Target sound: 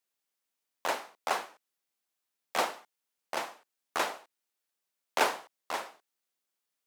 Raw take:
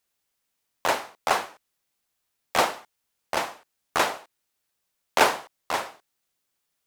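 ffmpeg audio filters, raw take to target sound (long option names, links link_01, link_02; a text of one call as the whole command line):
ffmpeg -i in.wav -af "highpass=200,volume=-7.5dB" out.wav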